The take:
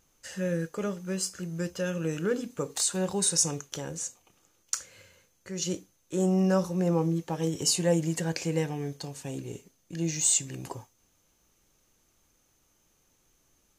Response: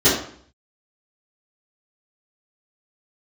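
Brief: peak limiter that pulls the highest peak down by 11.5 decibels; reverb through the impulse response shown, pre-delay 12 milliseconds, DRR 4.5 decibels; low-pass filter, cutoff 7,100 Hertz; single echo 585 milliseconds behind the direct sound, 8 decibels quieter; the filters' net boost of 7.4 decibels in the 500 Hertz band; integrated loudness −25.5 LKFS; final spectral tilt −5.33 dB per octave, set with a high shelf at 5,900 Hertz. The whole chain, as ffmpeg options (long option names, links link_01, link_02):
-filter_complex "[0:a]lowpass=7100,equalizer=frequency=500:width_type=o:gain=8.5,highshelf=frequency=5900:gain=-4.5,alimiter=limit=-19dB:level=0:latency=1,aecho=1:1:585:0.398,asplit=2[link_01][link_02];[1:a]atrim=start_sample=2205,adelay=12[link_03];[link_02][link_03]afir=irnorm=-1:irlink=0,volume=-26dB[link_04];[link_01][link_04]amix=inputs=2:normalize=0,volume=0.5dB"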